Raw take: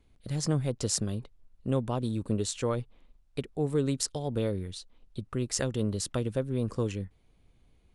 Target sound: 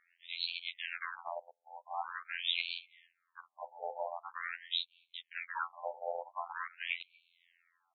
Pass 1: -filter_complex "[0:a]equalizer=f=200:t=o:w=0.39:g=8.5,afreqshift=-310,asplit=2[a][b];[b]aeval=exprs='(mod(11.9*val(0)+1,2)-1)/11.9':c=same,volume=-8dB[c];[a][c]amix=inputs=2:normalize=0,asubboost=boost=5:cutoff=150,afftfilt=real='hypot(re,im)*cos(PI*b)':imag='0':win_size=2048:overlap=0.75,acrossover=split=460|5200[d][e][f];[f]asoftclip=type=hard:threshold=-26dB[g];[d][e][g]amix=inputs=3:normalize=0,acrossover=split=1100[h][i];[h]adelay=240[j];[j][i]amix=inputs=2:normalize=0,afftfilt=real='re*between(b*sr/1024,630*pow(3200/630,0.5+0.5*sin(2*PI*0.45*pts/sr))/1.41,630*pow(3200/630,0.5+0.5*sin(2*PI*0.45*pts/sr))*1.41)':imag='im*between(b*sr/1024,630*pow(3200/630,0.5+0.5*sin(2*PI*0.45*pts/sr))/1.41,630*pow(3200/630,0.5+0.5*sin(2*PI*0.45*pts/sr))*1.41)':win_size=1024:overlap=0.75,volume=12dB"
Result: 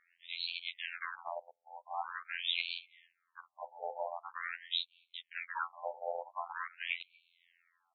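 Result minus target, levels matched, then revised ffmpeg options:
hard clip: distortion +14 dB
-filter_complex "[0:a]equalizer=f=200:t=o:w=0.39:g=8.5,afreqshift=-310,asplit=2[a][b];[b]aeval=exprs='(mod(11.9*val(0)+1,2)-1)/11.9':c=same,volume=-8dB[c];[a][c]amix=inputs=2:normalize=0,asubboost=boost=5:cutoff=150,afftfilt=real='hypot(re,im)*cos(PI*b)':imag='0':win_size=2048:overlap=0.75,acrossover=split=460|5200[d][e][f];[f]asoftclip=type=hard:threshold=-14.5dB[g];[d][e][g]amix=inputs=3:normalize=0,acrossover=split=1100[h][i];[h]adelay=240[j];[j][i]amix=inputs=2:normalize=0,afftfilt=real='re*between(b*sr/1024,630*pow(3200/630,0.5+0.5*sin(2*PI*0.45*pts/sr))/1.41,630*pow(3200/630,0.5+0.5*sin(2*PI*0.45*pts/sr))*1.41)':imag='im*between(b*sr/1024,630*pow(3200/630,0.5+0.5*sin(2*PI*0.45*pts/sr))/1.41,630*pow(3200/630,0.5+0.5*sin(2*PI*0.45*pts/sr))*1.41)':win_size=1024:overlap=0.75,volume=12dB"

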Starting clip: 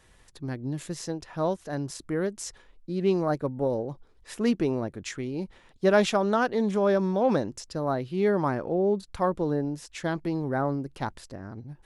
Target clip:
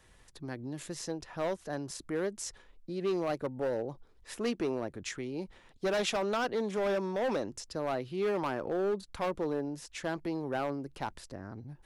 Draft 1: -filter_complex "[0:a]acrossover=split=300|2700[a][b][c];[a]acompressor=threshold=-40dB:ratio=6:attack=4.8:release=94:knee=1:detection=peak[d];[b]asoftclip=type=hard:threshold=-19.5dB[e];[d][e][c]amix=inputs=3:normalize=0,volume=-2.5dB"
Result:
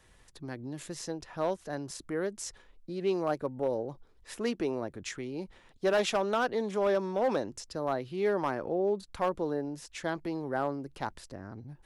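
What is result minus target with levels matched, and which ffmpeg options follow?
hard clip: distortion -7 dB
-filter_complex "[0:a]acrossover=split=300|2700[a][b][c];[a]acompressor=threshold=-40dB:ratio=6:attack=4.8:release=94:knee=1:detection=peak[d];[b]asoftclip=type=hard:threshold=-25.5dB[e];[d][e][c]amix=inputs=3:normalize=0,volume=-2.5dB"

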